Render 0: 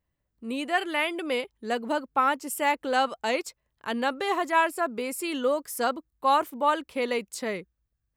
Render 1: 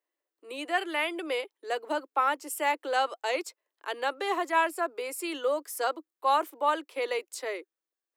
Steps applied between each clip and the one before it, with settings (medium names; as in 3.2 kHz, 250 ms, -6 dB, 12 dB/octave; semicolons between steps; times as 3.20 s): steep high-pass 300 Hz 72 dB/octave; trim -2.5 dB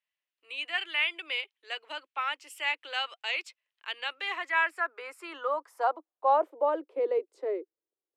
band-pass sweep 2.7 kHz -> 400 Hz, 4.13–7.01 s; trim +6.5 dB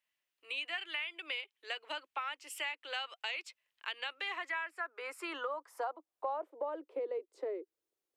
compression 6:1, threshold -39 dBFS, peak gain reduction 18 dB; trim +3 dB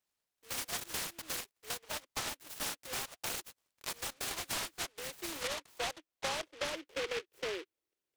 delay time shaken by noise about 2.2 kHz, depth 0.22 ms